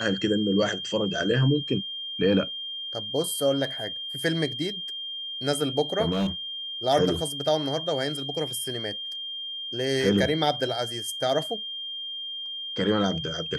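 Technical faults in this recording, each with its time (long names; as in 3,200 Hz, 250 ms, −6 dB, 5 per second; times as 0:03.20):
whistle 3,200 Hz −32 dBFS
0:06.11–0:06.30: clipping −22 dBFS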